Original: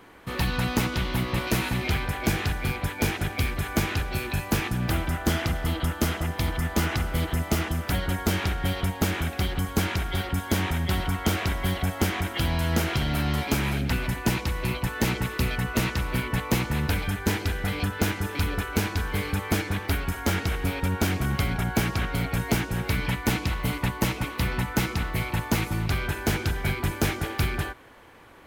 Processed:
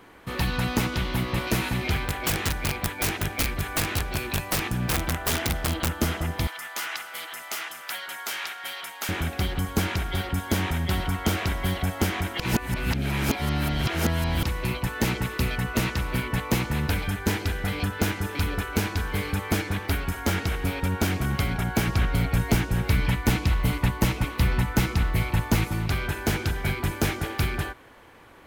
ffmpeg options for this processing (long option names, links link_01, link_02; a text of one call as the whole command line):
ffmpeg -i in.wav -filter_complex "[0:a]asplit=3[link_01][link_02][link_03];[link_01]afade=type=out:start_time=1.96:duration=0.02[link_04];[link_02]aeval=exprs='(mod(8.41*val(0)+1,2)-1)/8.41':channel_layout=same,afade=type=in:start_time=1.96:duration=0.02,afade=type=out:start_time=5.88:duration=0.02[link_05];[link_03]afade=type=in:start_time=5.88:duration=0.02[link_06];[link_04][link_05][link_06]amix=inputs=3:normalize=0,asettb=1/sr,asplit=3[link_07][link_08][link_09];[link_07]atrim=end=6.474[link_10];[link_08]atrim=start=6.47:end=9.09,asetpts=PTS-STARTPTS,afade=type=in:duration=0.004:curve=qsin,afade=type=out:start_time=2.616:duration=0.004:curve=qsin,highpass=1100[link_11];[link_09]atrim=start=9.086[link_12];[link_10][link_11]acrossfade=duration=0.004:curve1=hsin:curve2=qsin[link_13];[link_13][link_12]acrossfade=duration=0.004:curve1=qsin:curve2=hsin,asettb=1/sr,asplit=3[link_14][link_15][link_16];[link_14]atrim=end=21.874[link_17];[link_15]atrim=start=21.87:end=25.64,asetpts=PTS-STARTPTS,afade=type=in:duration=0.004:curve=qsin,afade=type=out:start_time=3.766:duration=0.004:curve=qsin,lowshelf=frequency=100:gain=9[link_18];[link_16]atrim=start=25.636[link_19];[link_17][link_18]acrossfade=duration=0.004:curve1=hsin:curve2=qsin[link_20];[link_20][link_19]acrossfade=duration=0.004:curve1=qsin:curve2=hsin,asplit=3[link_21][link_22][link_23];[link_21]atrim=end=12.402[link_24];[link_22]atrim=start=12.398:end=14.432,asetpts=PTS-STARTPTS,areverse[link_25];[link_23]atrim=start=14.428[link_26];[link_24][link_25]acrossfade=duration=0.004:curve1=hsin:curve2=hsin[link_27];[link_27][link_26]acrossfade=duration=0.004:curve1=hsin:curve2=hsin" out.wav